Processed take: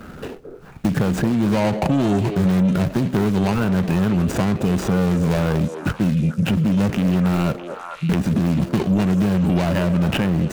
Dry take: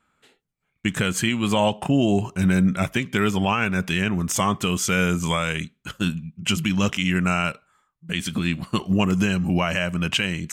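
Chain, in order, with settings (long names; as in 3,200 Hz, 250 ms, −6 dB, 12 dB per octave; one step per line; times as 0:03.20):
running median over 41 samples
in parallel at 0 dB: compressor whose output falls as the input rises −33 dBFS, ratio −1
on the sum: soft clipping −17 dBFS, distortion −15 dB
echo through a band-pass that steps 217 ms, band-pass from 430 Hz, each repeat 1.4 octaves, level −7 dB
multiband upward and downward compressor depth 70%
level +5 dB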